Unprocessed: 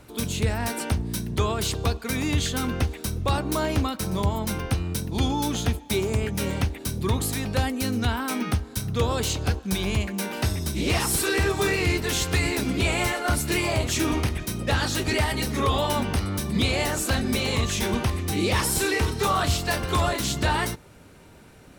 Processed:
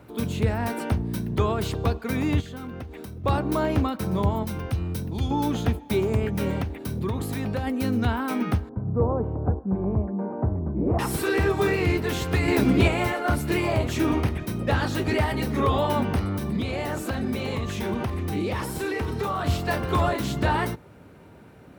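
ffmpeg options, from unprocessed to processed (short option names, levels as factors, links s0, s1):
-filter_complex "[0:a]asettb=1/sr,asplit=3[s0][s1][s2];[s0]atrim=end=2.404[s3];[s1]atrim=start=2.4:end=3.24,asetpts=PTS-STARTPTS,afade=t=in:d=0.004:c=qsin,afade=t=out:st=0.836:d=0.004:c=qsin,acompressor=threshold=0.02:ratio=6:attack=3.2:release=140:knee=1:detection=peak[s4];[s2]atrim=start=3.236[s5];[s3][s4]acrossfade=d=0.004:c1=hsin:c2=qsin[s6];[s6][s5]acrossfade=d=0.004:c1=qsin:c2=hsin,asettb=1/sr,asplit=3[s7][s8][s9];[s7]atrim=end=4.434[s10];[s8]atrim=start=4.43:end=5.31,asetpts=PTS-STARTPTS,afade=t=in:d=0.004:c=qsin,afade=t=out:st=0.876:d=0.004:c=qsin,acrossover=split=130|3000[s11][s12][s13];[s12]acompressor=threshold=0.0224:ratio=6:attack=3.2:release=140:knee=2.83:detection=peak[s14];[s11][s14][s13]amix=inputs=3:normalize=0[s15];[s9]atrim=start=5.306[s16];[s10][s15]acrossfade=d=0.004:c1=hsin:c2=qsin[s17];[s17][s16]acrossfade=d=0.004:c1=qsin:c2=hsin,asettb=1/sr,asplit=3[s18][s19][s20];[s18]atrim=end=6.614[s21];[s19]atrim=start=6.61:end=7.67,asetpts=PTS-STARTPTS,afade=t=in:d=0.004:c=qsin,afade=t=out:st=1.056:d=0.004:c=qsin,acompressor=threshold=0.0631:ratio=6:attack=3.2:release=140:knee=1:detection=peak[s22];[s20]atrim=start=7.666[s23];[s21][s22]acrossfade=d=0.004:c1=hsin:c2=qsin[s24];[s24][s23]acrossfade=d=0.004:c1=qsin:c2=hsin,asettb=1/sr,asplit=3[s25][s26][s27];[s25]atrim=end=8.694[s28];[s26]atrim=start=8.69:end=10.99,asetpts=PTS-STARTPTS,afade=t=in:d=0.004:c=qsin,afade=t=out:st=2.296:d=0.004:c=qsin,lowpass=f=1000:w=0.5412,lowpass=f=1000:w=1.3066[s29];[s27]atrim=start=10.986[s30];[s28][s29]acrossfade=d=0.004:c1=hsin:c2=qsin[s31];[s31][s30]acrossfade=d=0.004:c1=qsin:c2=hsin,asettb=1/sr,asplit=3[s32][s33][s34];[s32]atrim=end=16.274[s35];[s33]atrim=start=16.27:end=19.46,asetpts=PTS-STARTPTS,afade=t=in:d=0.004:c=qsin,afade=t=out:st=3.186:d=0.004:c=qsin,acompressor=threshold=0.0631:ratio=5:attack=3.2:release=140:knee=1:detection=peak[s36];[s34]atrim=start=19.456[s37];[s35][s36]acrossfade=d=0.004:c1=hsin:c2=qsin[s38];[s38][s37]acrossfade=d=0.004:c1=qsin:c2=hsin,asplit=3[s39][s40][s41];[s39]atrim=end=12.482[s42];[s40]atrim=start=12.478:end=12.882,asetpts=PTS-STARTPTS,volume=1.68[s43];[s41]atrim=start=12.878[s44];[s42][s43]acrossfade=d=0.004:c1=hsin:c2=hsin[s45];[s45][s44]acrossfade=d=0.004:c1=hsin:c2=hsin,highpass=74,equalizer=f=7500:w=0.37:g=-14,volume=1.33"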